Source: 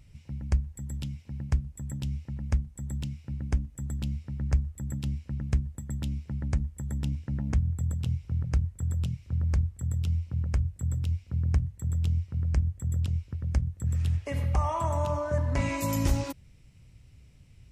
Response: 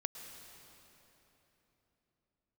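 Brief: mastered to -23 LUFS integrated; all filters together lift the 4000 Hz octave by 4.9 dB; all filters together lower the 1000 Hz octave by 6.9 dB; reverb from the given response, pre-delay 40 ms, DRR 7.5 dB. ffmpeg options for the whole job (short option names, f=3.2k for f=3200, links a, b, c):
-filter_complex "[0:a]equalizer=f=1k:t=o:g=-8,equalizer=f=4k:t=o:g=7,asplit=2[a][b];[1:a]atrim=start_sample=2205,adelay=40[c];[b][c]afir=irnorm=-1:irlink=0,volume=-7dB[d];[a][d]amix=inputs=2:normalize=0,volume=7.5dB"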